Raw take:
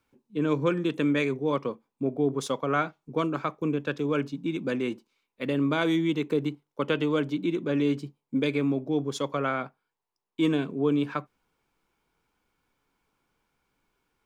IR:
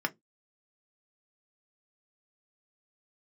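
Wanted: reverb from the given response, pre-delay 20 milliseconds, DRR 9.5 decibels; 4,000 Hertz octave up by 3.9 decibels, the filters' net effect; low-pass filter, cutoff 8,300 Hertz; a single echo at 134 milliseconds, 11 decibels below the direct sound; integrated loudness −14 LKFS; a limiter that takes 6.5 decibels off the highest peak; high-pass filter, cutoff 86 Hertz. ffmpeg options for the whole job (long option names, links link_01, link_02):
-filter_complex "[0:a]highpass=86,lowpass=8300,equalizer=frequency=4000:width_type=o:gain=5,alimiter=limit=-18.5dB:level=0:latency=1,aecho=1:1:134:0.282,asplit=2[link_01][link_02];[1:a]atrim=start_sample=2205,adelay=20[link_03];[link_02][link_03]afir=irnorm=-1:irlink=0,volume=-16.5dB[link_04];[link_01][link_04]amix=inputs=2:normalize=0,volume=15dB"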